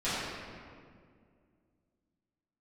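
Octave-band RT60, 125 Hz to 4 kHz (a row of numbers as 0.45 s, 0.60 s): 2.7 s, 2.8 s, 2.4 s, 1.9 s, 1.6 s, 1.3 s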